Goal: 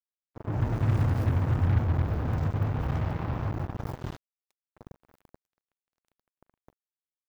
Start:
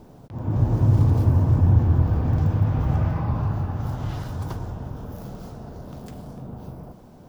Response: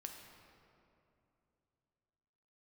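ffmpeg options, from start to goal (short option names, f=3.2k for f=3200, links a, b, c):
-filter_complex "[0:a]asplit=3[a][b][c];[a]afade=t=out:st=4.16:d=0.02[d];[b]highpass=740,afade=t=in:st=4.16:d=0.02,afade=t=out:st=4.75:d=0.02[e];[c]afade=t=in:st=4.75:d=0.02[f];[d][e][f]amix=inputs=3:normalize=0,acrusher=bits=3:mix=0:aa=0.5,volume=-7.5dB"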